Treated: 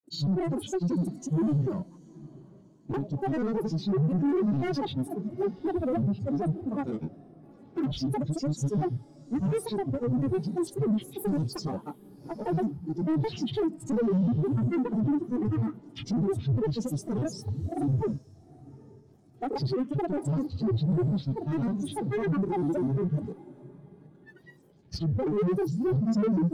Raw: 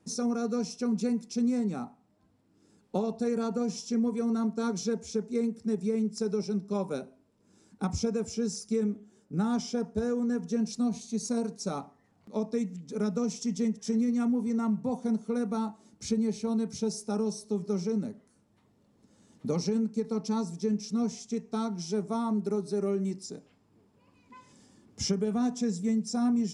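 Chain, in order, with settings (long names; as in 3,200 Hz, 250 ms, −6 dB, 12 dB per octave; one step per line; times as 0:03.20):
in parallel at −6.5 dB: log-companded quantiser 4 bits
on the sum: granular cloud 100 ms, grains 20 per second, pitch spread up and down by 12 semitones
gain on a spectral selection 0:19.76–0:19.96, 970–3,500 Hz +9 dB
soft clipping −31.5 dBFS, distortion −7 dB
on a send: feedback delay with all-pass diffusion 818 ms, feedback 42%, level −14 dB
on the sum: every bin expanded away from the loudest bin 1.5 to 1
level +8 dB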